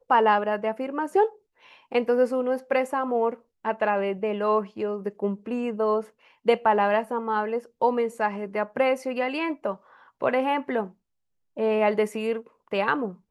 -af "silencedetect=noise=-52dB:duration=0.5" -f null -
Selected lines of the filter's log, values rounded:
silence_start: 10.93
silence_end: 11.56 | silence_duration: 0.63